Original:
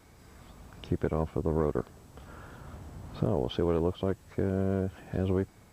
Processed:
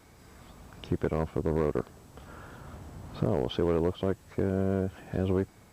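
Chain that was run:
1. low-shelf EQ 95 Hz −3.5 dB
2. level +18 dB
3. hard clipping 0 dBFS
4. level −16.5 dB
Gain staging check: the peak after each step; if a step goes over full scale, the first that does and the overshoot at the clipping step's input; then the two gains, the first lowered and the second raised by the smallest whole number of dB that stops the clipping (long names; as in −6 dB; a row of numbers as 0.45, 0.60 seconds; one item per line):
−14.0, +4.0, 0.0, −16.5 dBFS
step 2, 4.0 dB
step 2 +14 dB, step 4 −12.5 dB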